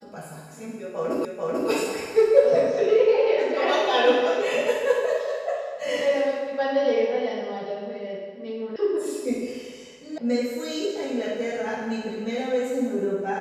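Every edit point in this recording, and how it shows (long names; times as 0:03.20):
0:01.25: the same again, the last 0.44 s
0:08.76: cut off before it has died away
0:10.18: cut off before it has died away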